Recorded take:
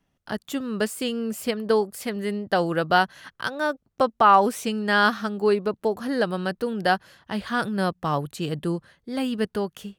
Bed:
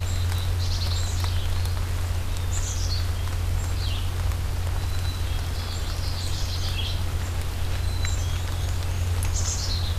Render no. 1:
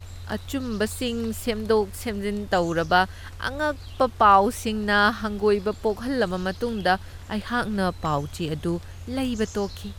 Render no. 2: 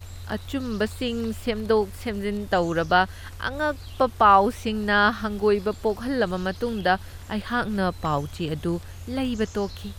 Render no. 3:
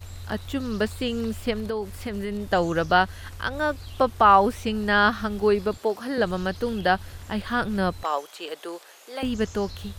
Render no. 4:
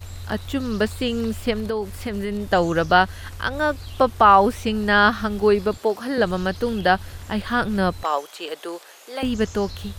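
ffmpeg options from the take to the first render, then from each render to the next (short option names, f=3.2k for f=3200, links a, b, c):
-filter_complex "[1:a]volume=-13.5dB[a];[0:a][a]amix=inputs=2:normalize=0"
-filter_complex "[0:a]acrossover=split=4400[a][b];[b]acompressor=threshold=-52dB:ratio=4:attack=1:release=60[c];[a][c]amix=inputs=2:normalize=0,highshelf=f=8.5k:g=9"
-filter_complex "[0:a]asettb=1/sr,asplit=3[a][b][c];[a]atrim=end=1.594[d];[b]atrim=start=1.59:end=2.41,asetpts=PTS-STARTPTS,afade=t=in:d=0.004:c=qsin,afade=t=out:st=0.816:d=0.004:c=qsin,acompressor=threshold=-25dB:ratio=5:attack=3.2:release=140:knee=1:detection=peak[e];[c]atrim=start=2.406[f];[d][e]acrossfade=d=0.004:c1=hsin:c2=qsin[g];[g][f]acrossfade=d=0.004:c1=qsin:c2=hsin,asettb=1/sr,asplit=3[h][i][j];[h]atrim=end=5.774[k];[i]atrim=start=5.77:end=6.18,asetpts=PTS-STARTPTS,afade=t=in:d=0.004:c=qsin,afade=t=out:st=0.406:d=0.004:c=qsin,highpass=270[l];[j]atrim=start=6.176[m];[k][l]acrossfade=d=0.004:c1=hsin:c2=qsin[n];[n][m]acrossfade=d=0.004:c1=qsin:c2=hsin,asettb=1/sr,asplit=3[o][p][q];[o]atrim=end=8.034[r];[p]atrim=start=8.03:end=9.23,asetpts=PTS-STARTPTS,afade=t=in:d=0.004:c=qsin,afade=t=out:st=1.196:d=0.004:c=qsin,highpass=f=440:w=0.5412,highpass=f=440:w=1.3066[s];[q]atrim=start=9.226[t];[r][s]acrossfade=d=0.004:c1=hsin:c2=qsin[u];[u][t]acrossfade=d=0.004:c1=qsin:c2=hsin"
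-af "volume=3.5dB,alimiter=limit=-3dB:level=0:latency=1"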